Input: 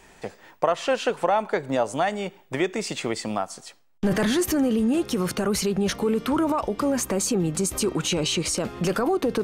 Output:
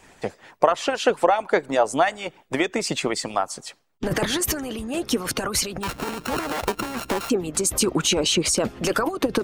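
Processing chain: 5.83–7.3 sample sorter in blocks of 32 samples; harmonic-percussive split harmonic -17 dB; gain +6 dB

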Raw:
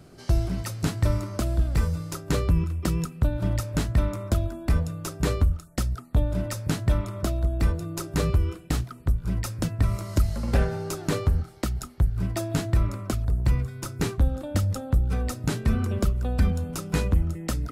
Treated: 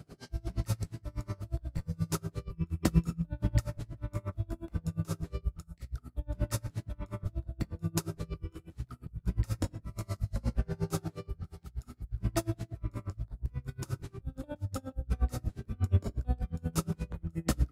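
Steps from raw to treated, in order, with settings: HPF 89 Hz 6 dB/oct; low shelf 160 Hz +8.5 dB; in parallel at -1 dB: level quantiser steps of 17 dB; on the sum: auto swell 0.338 s; doubler 19 ms -13.5 dB; shoebox room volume 76 m³, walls mixed, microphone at 0.38 m; dB-linear tremolo 8.4 Hz, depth 30 dB; gain -2.5 dB

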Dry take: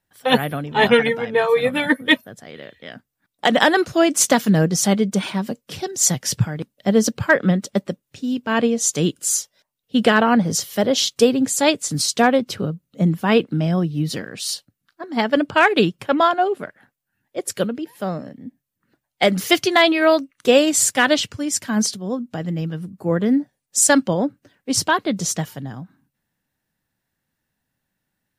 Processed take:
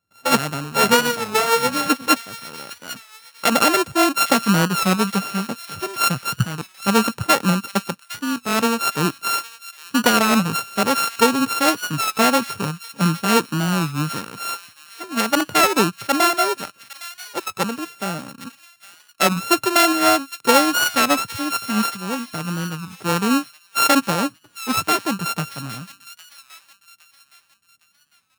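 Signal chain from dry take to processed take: sample sorter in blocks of 32 samples; HPF 59 Hz; thin delay 0.81 s, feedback 41%, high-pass 2000 Hz, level -13 dB; record warp 33 1/3 rpm, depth 100 cents; gain -1 dB

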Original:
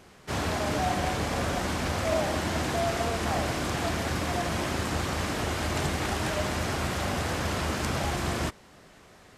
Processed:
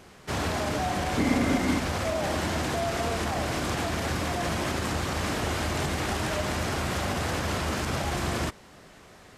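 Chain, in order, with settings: limiter -22 dBFS, peak gain reduction 7.5 dB; 1.17–1.78 small resonant body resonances 260/2100 Hz, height 16 dB -> 12 dB; gain +2.5 dB

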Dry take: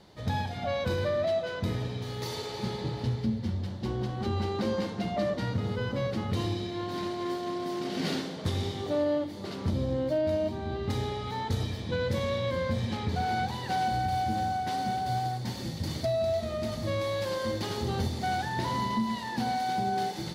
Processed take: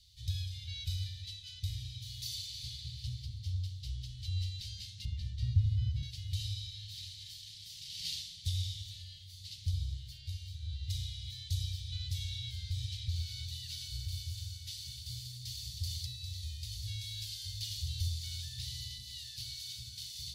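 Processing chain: inverse Chebyshev band-stop 250–1200 Hz, stop band 60 dB; 5.05–6.03 tilt -3 dB/oct; gain +1 dB

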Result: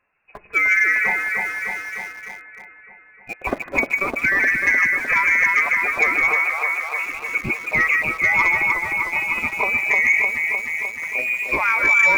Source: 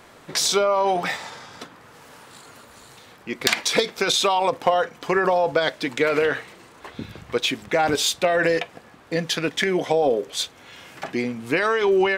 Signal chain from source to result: per-bin expansion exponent 1.5; on a send: echo with dull and thin repeats by turns 0.152 s, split 1200 Hz, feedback 83%, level -2 dB; on the sum: inverted band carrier 2700 Hz; in parallel at -6 dB: sample gate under -31 dBFS; 6.36–7.06 on the sum: resonant low shelf 400 Hz -13.5 dB, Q 1.5; soft clip -7 dBFS, distortion -23 dB; mismatched tape noise reduction decoder only

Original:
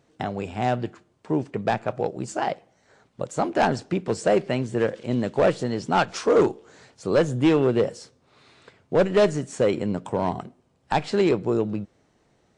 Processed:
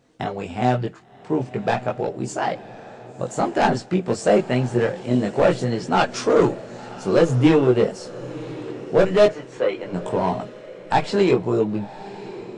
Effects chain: 9.26–9.93 three-band isolator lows -21 dB, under 420 Hz, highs -22 dB, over 4000 Hz; chorus voices 6, 0.28 Hz, delay 20 ms, depth 4.5 ms; diffused feedback echo 1.071 s, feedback 40%, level -16 dB; gain +6 dB

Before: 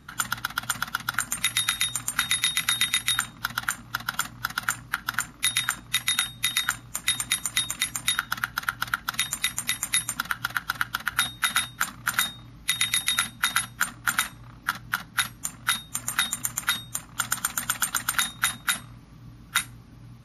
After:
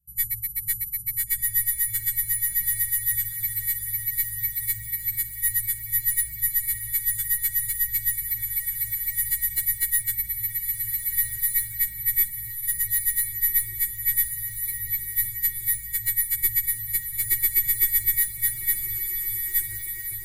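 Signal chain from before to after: frequency quantiser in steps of 3 st; gate with hold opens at -36 dBFS; inverse Chebyshev band-stop 550–2900 Hz, stop band 80 dB; one-sided clip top -33.5 dBFS, bottom -17 dBFS; on a send: diffused feedback echo 1.465 s, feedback 40%, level -6 dB; on the sum: gain +7 dB

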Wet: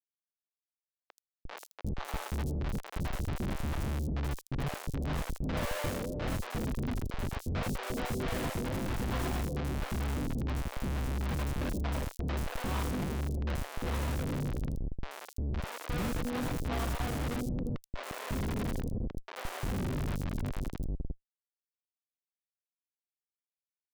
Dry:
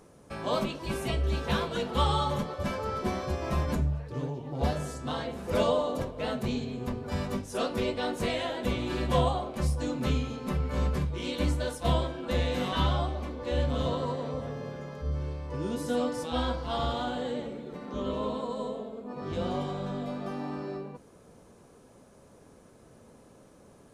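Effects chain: opening faded in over 3.93 s; Schmitt trigger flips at -29 dBFS; three bands offset in time mids, highs, lows 80/350 ms, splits 520/4900 Hz

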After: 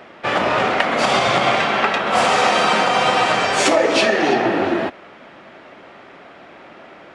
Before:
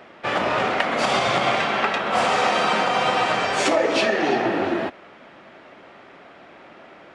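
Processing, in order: 2.07–4.34 high shelf 6400 Hz +5.5 dB; gain +4 dB

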